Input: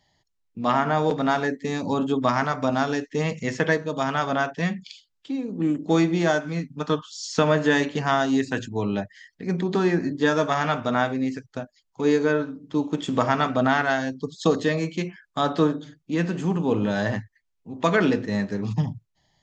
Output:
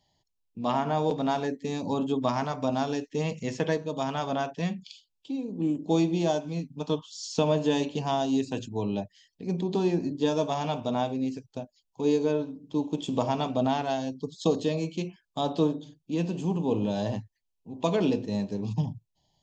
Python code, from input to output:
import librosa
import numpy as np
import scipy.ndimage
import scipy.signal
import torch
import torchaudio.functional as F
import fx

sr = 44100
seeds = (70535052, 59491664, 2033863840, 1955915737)

y = fx.band_shelf(x, sr, hz=1600.0, db=fx.steps((0.0, -9.0), (4.75, -15.5)), octaves=1.0)
y = y * 10.0 ** (-4.0 / 20.0)